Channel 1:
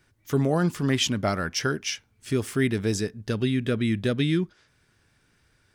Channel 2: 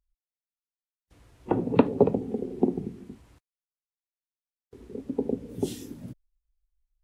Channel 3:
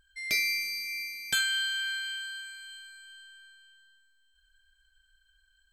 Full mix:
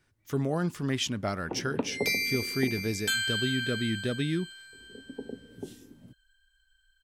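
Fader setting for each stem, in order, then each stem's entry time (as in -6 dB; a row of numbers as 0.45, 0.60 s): -6.0, -11.5, -1.0 dB; 0.00, 0.00, 1.75 s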